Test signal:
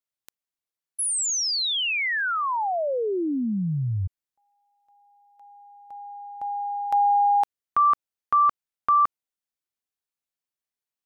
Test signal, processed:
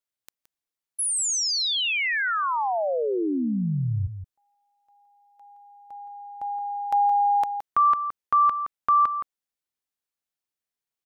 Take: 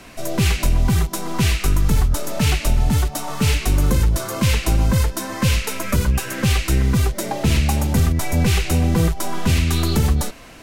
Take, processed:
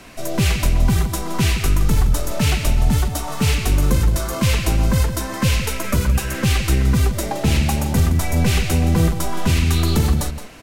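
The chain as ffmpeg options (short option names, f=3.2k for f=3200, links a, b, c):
-filter_complex "[0:a]asplit=2[a][b];[b]adelay=169.1,volume=-10dB,highshelf=f=4k:g=-3.8[c];[a][c]amix=inputs=2:normalize=0"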